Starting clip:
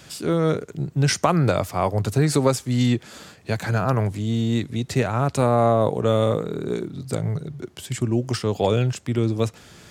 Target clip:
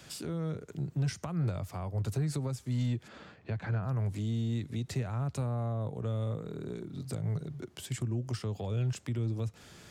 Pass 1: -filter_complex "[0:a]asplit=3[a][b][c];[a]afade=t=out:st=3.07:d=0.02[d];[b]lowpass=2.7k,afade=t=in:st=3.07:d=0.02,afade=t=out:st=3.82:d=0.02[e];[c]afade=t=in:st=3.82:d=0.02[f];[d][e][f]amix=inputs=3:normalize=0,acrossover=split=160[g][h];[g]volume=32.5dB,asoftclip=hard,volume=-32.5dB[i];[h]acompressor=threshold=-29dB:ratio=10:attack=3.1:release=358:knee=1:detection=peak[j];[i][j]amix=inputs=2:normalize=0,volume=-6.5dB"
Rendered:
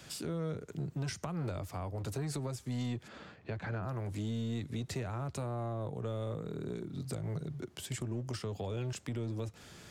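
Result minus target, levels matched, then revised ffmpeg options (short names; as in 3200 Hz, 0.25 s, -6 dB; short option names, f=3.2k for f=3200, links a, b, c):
overloaded stage: distortion +16 dB
-filter_complex "[0:a]asplit=3[a][b][c];[a]afade=t=out:st=3.07:d=0.02[d];[b]lowpass=2.7k,afade=t=in:st=3.07:d=0.02,afade=t=out:st=3.82:d=0.02[e];[c]afade=t=in:st=3.82:d=0.02[f];[d][e][f]amix=inputs=3:normalize=0,acrossover=split=160[g][h];[g]volume=21.5dB,asoftclip=hard,volume=-21.5dB[i];[h]acompressor=threshold=-29dB:ratio=10:attack=3.1:release=358:knee=1:detection=peak[j];[i][j]amix=inputs=2:normalize=0,volume=-6.5dB"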